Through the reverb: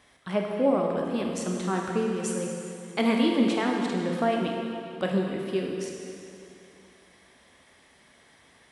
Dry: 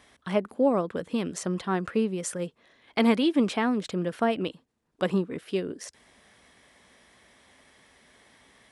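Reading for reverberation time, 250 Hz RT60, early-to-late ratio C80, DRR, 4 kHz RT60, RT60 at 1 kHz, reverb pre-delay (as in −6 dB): 2.7 s, 2.7 s, 2.5 dB, −0.5 dB, 2.5 s, 2.7 s, 7 ms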